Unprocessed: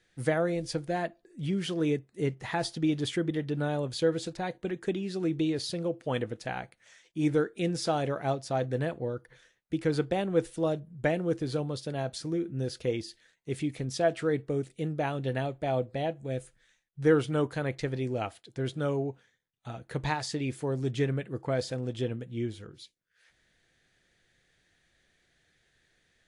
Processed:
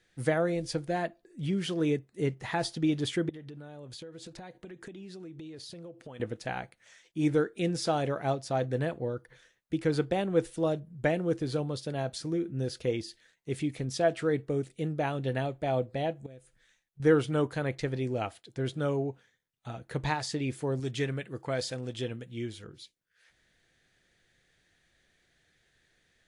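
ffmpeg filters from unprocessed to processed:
-filter_complex "[0:a]asettb=1/sr,asplit=3[s0][s1][s2];[s0]atrim=end=3.294[s3];[s1]atrim=start=3.29:end=6.2,asetpts=PTS-STARTPTS,afade=t=in:d=0.004:c=qsin,afade=t=out:st=2.906:d=0.004:c=qsin,acompressor=threshold=0.00891:ratio=12:attack=3.2:release=140:knee=1:detection=peak[s4];[s2]atrim=start=6.196[s5];[s3][s4]acrossfade=d=0.004:c1=hsin:c2=qsin[s6];[s6][s5]acrossfade=d=0.004:c1=qsin:c2=hsin,asettb=1/sr,asplit=3[s7][s8][s9];[s7]atrim=end=16.264[s10];[s8]atrim=start=16.26:end=17,asetpts=PTS-STARTPTS,afade=t=in:d=0.004:c=qsin,afade=t=out:st=0.736:d=0.004:c=qsin,acompressor=threshold=0.001:ratio=2:attack=3.2:release=140:knee=1:detection=peak[s11];[s9]atrim=start=16.996[s12];[s10][s11]acrossfade=d=0.004:c1=hsin:c2=qsin[s13];[s13][s12]acrossfade=d=0.004:c1=qsin:c2=hsin,asettb=1/sr,asplit=3[s14][s15][s16];[s14]atrim=end=20.804[s17];[s15]atrim=start=20.8:end=22.64,asetpts=PTS-STARTPTS,afade=t=in:d=0.004:c=qsin,afade=t=out:st=1.836:d=0.004:c=qsin,tiltshelf=f=1200:g=-4[s18];[s16]atrim=start=22.636[s19];[s17][s18]acrossfade=d=0.004:c1=hsin:c2=qsin[s20];[s20][s19]acrossfade=d=0.004:c1=qsin:c2=hsin"

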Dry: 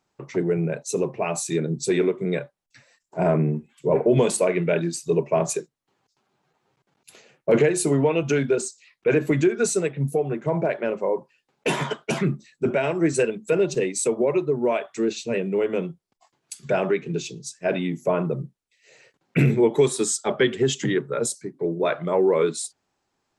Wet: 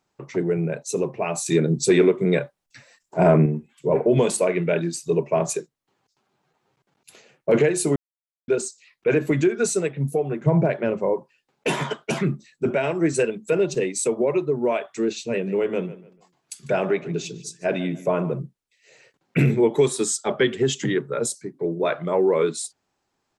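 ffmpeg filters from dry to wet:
-filter_complex "[0:a]asettb=1/sr,asplit=3[s0][s1][s2];[s0]atrim=end=1.464[s3];[s1]atrim=start=1.46:end=3.46,asetpts=PTS-STARTPTS,afade=t=in:d=0.004:c=qsin,afade=t=out:st=1.996:d=0.004:c=qsin,acontrast=28[s4];[s2]atrim=start=3.456[s5];[s3][s4]acrossfade=d=0.004:c1=hsin:c2=qsin[s6];[s6][s5]acrossfade=d=0.004:c1=qsin:c2=hsin,asettb=1/sr,asplit=3[s7][s8][s9];[s7]atrim=end=10.414[s10];[s8]atrim=start=10.41:end=11.14,asetpts=PTS-STARTPTS,afade=t=in:d=0.004:c=qsin,afade=t=out:st=0.726:d=0.004:c=qsin,equalizer=f=110:t=o:w=1.9:g=12[s11];[s9]atrim=start=11.136[s12];[s10][s11]acrossfade=d=0.004:c1=hsin:c2=qsin[s13];[s13][s12]acrossfade=d=0.004:c1=qsin:c2=hsin,asplit=3[s14][s15][s16];[s14]afade=t=out:st=15.46:d=0.02[s17];[s15]asplit=2[s18][s19];[s19]adelay=147,lowpass=f=4400:p=1,volume=0.158,asplit=2[s20][s21];[s21]adelay=147,lowpass=f=4400:p=1,volume=0.29,asplit=2[s22][s23];[s23]adelay=147,lowpass=f=4400:p=1,volume=0.29[s24];[s18][s20][s22][s24]amix=inputs=4:normalize=0,afade=t=in:st=15.46:d=0.02,afade=t=out:st=18.38:d=0.02[s25];[s16]afade=t=in:st=18.38:d=0.02[s26];[s17][s25][s26]amix=inputs=3:normalize=0,asplit=3[s27][s28][s29];[s27]atrim=end=7.96,asetpts=PTS-STARTPTS,afade=t=out:st=7.956:d=0.004:c=hsin[s30];[s28]atrim=start=7.96:end=8.48,asetpts=PTS-STARTPTS,volume=0[s31];[s29]atrim=start=8.48,asetpts=PTS-STARTPTS,afade=t=in:d=0.004:c=hsin[s32];[s30][s31][s32]concat=n=3:v=0:a=1"

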